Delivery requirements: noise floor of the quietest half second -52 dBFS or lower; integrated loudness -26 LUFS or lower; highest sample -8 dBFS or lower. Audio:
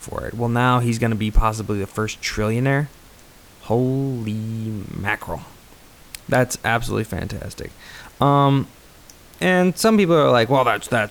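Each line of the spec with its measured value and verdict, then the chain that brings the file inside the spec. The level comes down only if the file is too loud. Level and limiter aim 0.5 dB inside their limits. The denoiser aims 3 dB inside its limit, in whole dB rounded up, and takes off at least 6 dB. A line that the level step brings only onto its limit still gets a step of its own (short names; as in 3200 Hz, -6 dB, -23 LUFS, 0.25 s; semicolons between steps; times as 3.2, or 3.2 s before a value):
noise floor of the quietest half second -47 dBFS: fail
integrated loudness -20.0 LUFS: fail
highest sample -5.0 dBFS: fail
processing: gain -6.5 dB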